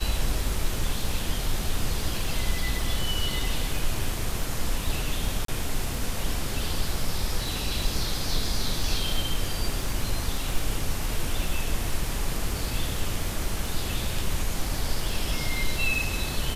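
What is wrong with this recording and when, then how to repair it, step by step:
surface crackle 25 per second −30 dBFS
0:05.45–0:05.48: drop-out 33 ms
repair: click removal
repair the gap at 0:05.45, 33 ms

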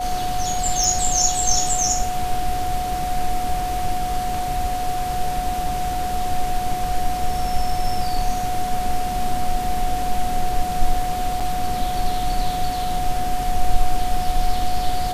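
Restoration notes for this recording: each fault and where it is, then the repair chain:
whistle 730 Hz −23 dBFS
0:00.84: click
0:11.40–0:11.41: drop-out 6.4 ms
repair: click removal
notch filter 730 Hz, Q 30
repair the gap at 0:11.40, 6.4 ms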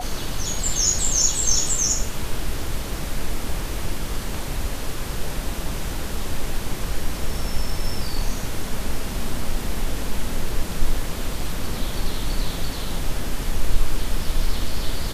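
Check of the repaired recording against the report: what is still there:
none of them is left

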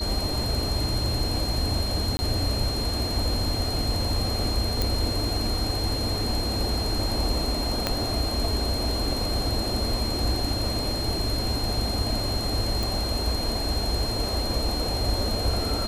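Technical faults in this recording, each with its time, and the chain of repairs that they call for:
whistle 4,200 Hz −30 dBFS
0:02.17–0:02.19: drop-out 20 ms
0:04.82: click
0:07.87: click −8 dBFS
0:12.83: click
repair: click removal
notch filter 4,200 Hz, Q 30
repair the gap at 0:02.17, 20 ms

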